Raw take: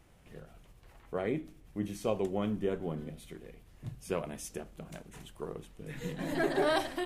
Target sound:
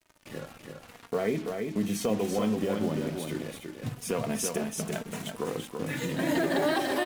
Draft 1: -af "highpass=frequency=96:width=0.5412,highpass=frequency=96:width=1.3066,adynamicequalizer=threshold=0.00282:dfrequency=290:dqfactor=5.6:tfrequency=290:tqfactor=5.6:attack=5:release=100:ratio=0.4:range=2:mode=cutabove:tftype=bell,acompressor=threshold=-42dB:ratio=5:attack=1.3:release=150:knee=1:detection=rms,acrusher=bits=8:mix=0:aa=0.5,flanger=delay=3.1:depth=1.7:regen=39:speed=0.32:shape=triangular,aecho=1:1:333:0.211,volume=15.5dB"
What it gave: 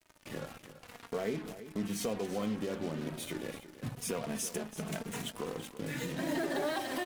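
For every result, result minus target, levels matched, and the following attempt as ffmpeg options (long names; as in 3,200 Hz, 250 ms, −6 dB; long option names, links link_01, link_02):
downward compressor: peak gain reduction +6.5 dB; echo-to-direct −8.5 dB
-af "highpass=frequency=96:width=0.5412,highpass=frequency=96:width=1.3066,adynamicequalizer=threshold=0.00282:dfrequency=290:dqfactor=5.6:tfrequency=290:tqfactor=5.6:attack=5:release=100:ratio=0.4:range=2:mode=cutabove:tftype=bell,acompressor=threshold=-34dB:ratio=5:attack=1.3:release=150:knee=1:detection=rms,acrusher=bits=8:mix=0:aa=0.5,flanger=delay=3.1:depth=1.7:regen=39:speed=0.32:shape=triangular,aecho=1:1:333:0.211,volume=15.5dB"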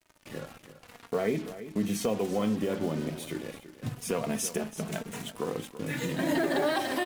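echo-to-direct −8.5 dB
-af "highpass=frequency=96:width=0.5412,highpass=frequency=96:width=1.3066,adynamicequalizer=threshold=0.00282:dfrequency=290:dqfactor=5.6:tfrequency=290:tqfactor=5.6:attack=5:release=100:ratio=0.4:range=2:mode=cutabove:tftype=bell,acompressor=threshold=-34dB:ratio=5:attack=1.3:release=150:knee=1:detection=rms,acrusher=bits=8:mix=0:aa=0.5,flanger=delay=3.1:depth=1.7:regen=39:speed=0.32:shape=triangular,aecho=1:1:333:0.562,volume=15.5dB"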